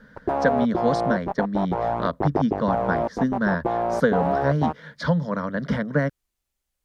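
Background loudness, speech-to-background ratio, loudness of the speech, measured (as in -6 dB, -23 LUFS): -26.0 LUFS, 0.5 dB, -25.5 LUFS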